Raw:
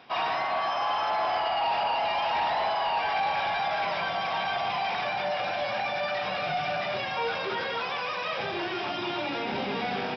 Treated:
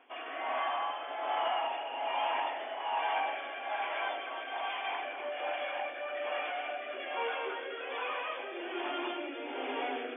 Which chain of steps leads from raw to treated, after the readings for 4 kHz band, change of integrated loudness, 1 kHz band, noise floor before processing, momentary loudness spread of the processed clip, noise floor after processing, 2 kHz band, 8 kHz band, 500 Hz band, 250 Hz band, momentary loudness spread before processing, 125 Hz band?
-8.5 dB, -7.0 dB, -7.5 dB, -32 dBFS, 6 LU, -42 dBFS, -6.5 dB, n/a, -6.0 dB, -7.0 dB, 4 LU, under -40 dB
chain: echo with dull and thin repeats by turns 0.204 s, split 2300 Hz, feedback 55%, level -4.5 dB; rotary speaker horn 1.2 Hz; FFT band-pass 240–3500 Hz; gain -5 dB

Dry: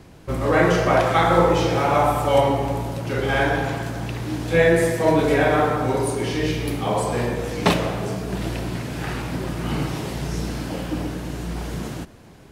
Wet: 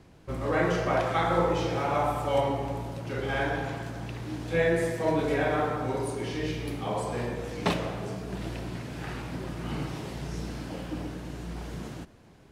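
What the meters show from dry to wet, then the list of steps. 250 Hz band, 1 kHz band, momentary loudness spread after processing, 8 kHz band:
-8.5 dB, -8.5 dB, 12 LU, -11.0 dB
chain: high shelf 11000 Hz -8.5 dB; gain -8.5 dB

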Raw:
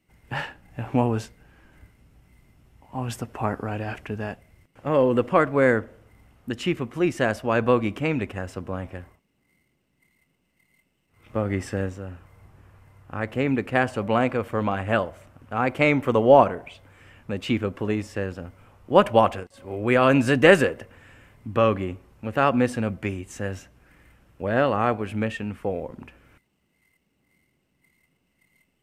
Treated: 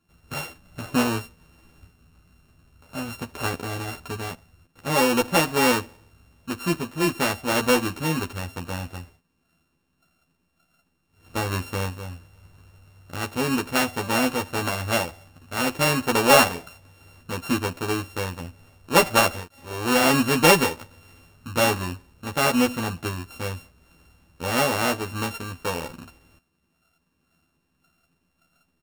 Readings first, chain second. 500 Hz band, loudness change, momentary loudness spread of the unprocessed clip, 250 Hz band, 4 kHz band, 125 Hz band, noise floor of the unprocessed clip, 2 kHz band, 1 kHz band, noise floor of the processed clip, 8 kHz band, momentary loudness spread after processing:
-3.5 dB, 0.0 dB, 17 LU, -1.0 dB, +9.5 dB, -2.0 dB, -72 dBFS, +2.0 dB, +0.5 dB, -72 dBFS, n/a, 17 LU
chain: sample sorter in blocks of 32 samples; doubler 12 ms -3 dB; gain -2 dB

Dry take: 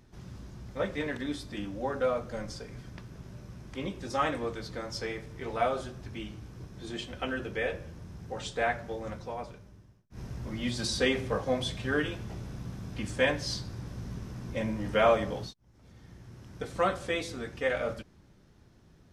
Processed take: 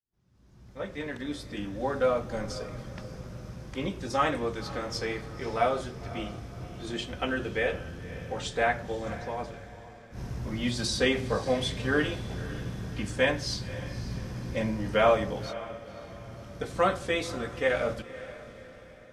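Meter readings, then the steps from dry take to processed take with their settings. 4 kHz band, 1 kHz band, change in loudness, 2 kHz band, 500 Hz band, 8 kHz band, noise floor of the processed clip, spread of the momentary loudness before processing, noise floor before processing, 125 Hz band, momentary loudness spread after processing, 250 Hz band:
+2.5 dB, +2.5 dB, +2.0 dB, +2.5 dB, +2.5 dB, +2.5 dB, -50 dBFS, 18 LU, -60 dBFS, +3.0 dB, 16 LU, +2.5 dB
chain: opening faded in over 2.07 s; AGC gain up to 11.5 dB; on a send: diffused feedback echo 0.539 s, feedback 45%, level -15 dB; on the sum: gain -8 dB

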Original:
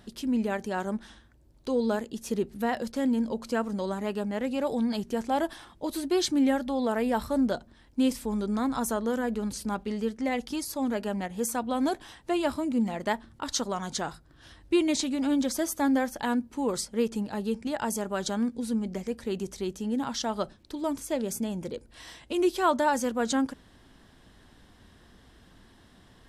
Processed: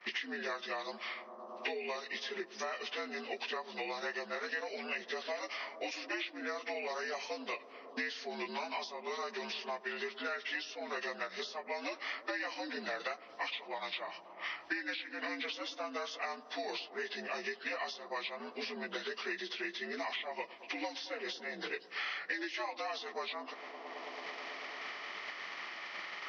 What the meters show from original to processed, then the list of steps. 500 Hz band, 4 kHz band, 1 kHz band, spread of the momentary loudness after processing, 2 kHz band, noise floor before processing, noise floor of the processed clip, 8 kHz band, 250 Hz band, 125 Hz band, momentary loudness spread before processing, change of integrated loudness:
-11.0 dB, -2.5 dB, -9.0 dB, 5 LU, +1.0 dB, -57 dBFS, -54 dBFS, -17.0 dB, -21.0 dB, under -25 dB, 8 LU, -10.5 dB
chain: inharmonic rescaling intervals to 82%; expander -50 dBFS; differentiator; compressor 6:1, threshold -53 dBFS, peak gain reduction 18 dB; speaker cabinet 230–4600 Hz, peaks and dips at 240 Hz -8 dB, 380 Hz +3 dB, 650 Hz +4 dB, 1000 Hz +4 dB, 1800 Hz +9 dB, 4200 Hz -3 dB; on a send: analogue delay 0.11 s, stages 1024, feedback 83%, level -21 dB; on the sum: three-band squash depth 100%; gain +15.5 dB

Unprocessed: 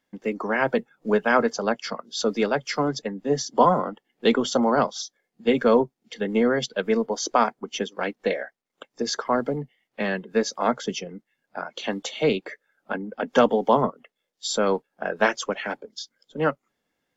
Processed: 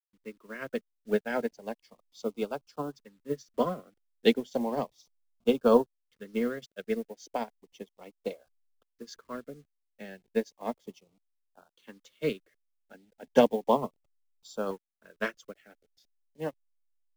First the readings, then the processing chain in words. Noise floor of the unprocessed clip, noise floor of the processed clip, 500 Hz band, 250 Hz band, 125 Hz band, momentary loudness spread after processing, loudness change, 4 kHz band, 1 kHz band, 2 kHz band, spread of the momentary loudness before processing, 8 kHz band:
-80 dBFS, -80 dBFS, -7.0 dB, -7.5 dB, -10.5 dB, 23 LU, -7.0 dB, -12.0 dB, -11.5 dB, -13.0 dB, 14 LU, n/a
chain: level-crossing sampler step -37 dBFS; LFO notch saw up 0.34 Hz 650–2200 Hz; upward expander 2.5:1, over -34 dBFS

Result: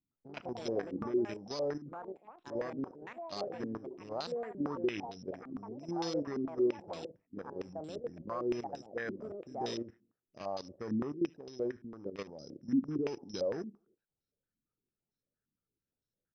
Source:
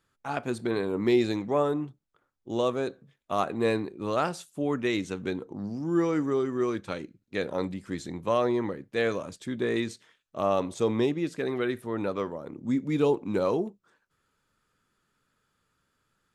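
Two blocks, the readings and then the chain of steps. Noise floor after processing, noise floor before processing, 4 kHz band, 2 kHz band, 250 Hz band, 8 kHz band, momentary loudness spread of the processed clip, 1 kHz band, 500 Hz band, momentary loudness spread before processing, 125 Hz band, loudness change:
under -85 dBFS, -77 dBFS, -7.5 dB, -12.0 dB, -8.0 dB, -8.0 dB, 12 LU, -10.5 dB, -9.5 dB, 10 LU, -12.0 dB, -9.0 dB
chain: Wiener smoothing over 41 samples; level quantiser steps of 15 dB; limiter -26 dBFS, peak gain reduction 9 dB; careless resampling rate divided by 8×, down none, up zero stuff; on a send: feedback echo 75 ms, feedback 40%, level -24 dB; on the sum: echoes that change speed 0.112 s, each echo +6 st, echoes 2, each echo -6 dB; air absorption 180 m; stepped low-pass 8.8 Hz 260–3800 Hz; gain -5.5 dB

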